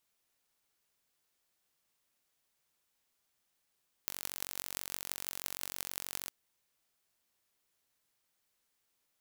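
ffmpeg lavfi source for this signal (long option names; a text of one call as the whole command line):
ffmpeg -f lavfi -i "aevalsrc='0.422*eq(mod(n,952),0)*(0.5+0.5*eq(mod(n,7616),0))':duration=2.22:sample_rate=44100" out.wav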